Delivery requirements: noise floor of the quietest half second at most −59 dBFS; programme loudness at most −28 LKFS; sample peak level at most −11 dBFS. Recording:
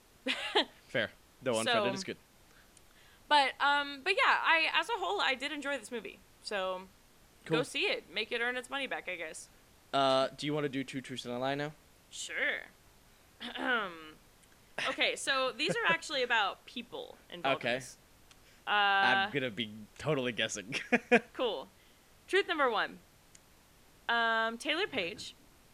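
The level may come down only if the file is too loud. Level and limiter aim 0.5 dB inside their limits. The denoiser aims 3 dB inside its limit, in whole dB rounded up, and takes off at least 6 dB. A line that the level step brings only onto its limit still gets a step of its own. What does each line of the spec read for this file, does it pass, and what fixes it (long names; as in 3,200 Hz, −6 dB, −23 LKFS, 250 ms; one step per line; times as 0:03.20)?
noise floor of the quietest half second −62 dBFS: in spec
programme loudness −32.0 LKFS: in spec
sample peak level −12.0 dBFS: in spec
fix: no processing needed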